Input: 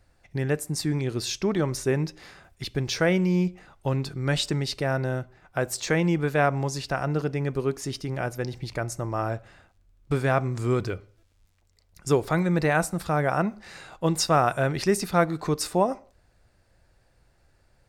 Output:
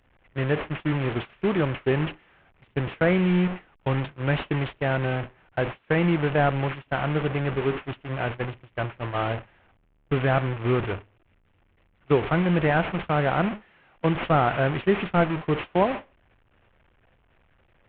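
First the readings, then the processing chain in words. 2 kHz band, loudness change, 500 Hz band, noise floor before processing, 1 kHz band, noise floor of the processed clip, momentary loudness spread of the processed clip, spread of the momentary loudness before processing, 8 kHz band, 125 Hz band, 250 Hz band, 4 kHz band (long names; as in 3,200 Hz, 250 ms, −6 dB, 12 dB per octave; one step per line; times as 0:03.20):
+2.0 dB, +0.5 dB, +1.0 dB, −64 dBFS, +1.0 dB, −64 dBFS, 10 LU, 10 LU, below −40 dB, +1.0 dB, +1.0 dB, −4.5 dB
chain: linear delta modulator 16 kbit/s, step −24.5 dBFS
noise gate −28 dBFS, range −35 dB
level +1 dB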